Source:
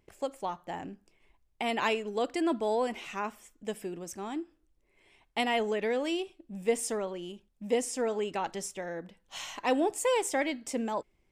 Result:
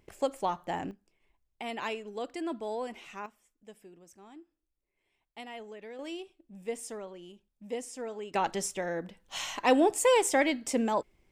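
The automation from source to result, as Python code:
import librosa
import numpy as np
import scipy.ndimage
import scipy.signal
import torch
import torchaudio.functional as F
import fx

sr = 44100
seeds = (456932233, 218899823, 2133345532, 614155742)

y = fx.gain(x, sr, db=fx.steps((0.0, 4.0), (0.91, -6.5), (3.26, -15.0), (5.99, -8.0), (8.34, 4.0)))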